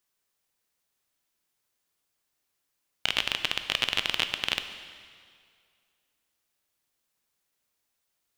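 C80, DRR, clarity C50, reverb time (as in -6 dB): 10.5 dB, 8.5 dB, 9.5 dB, 2.1 s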